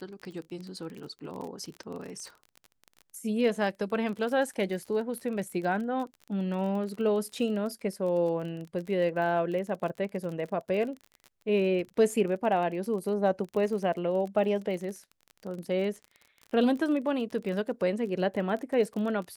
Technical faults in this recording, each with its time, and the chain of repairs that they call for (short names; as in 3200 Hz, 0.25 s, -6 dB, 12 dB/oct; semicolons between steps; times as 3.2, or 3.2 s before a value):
crackle 30/s -36 dBFS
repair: de-click